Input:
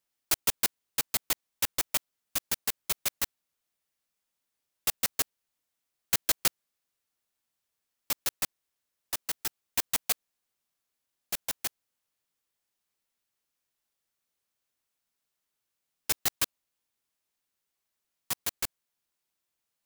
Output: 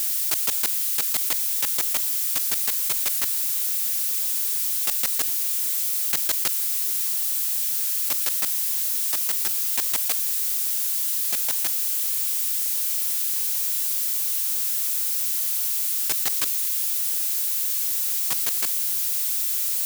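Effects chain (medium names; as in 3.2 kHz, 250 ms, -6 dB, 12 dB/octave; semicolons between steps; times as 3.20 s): zero-crossing glitches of -28 dBFS; high-pass 130 Hz 6 dB/octave; level flattener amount 70%; trim -1 dB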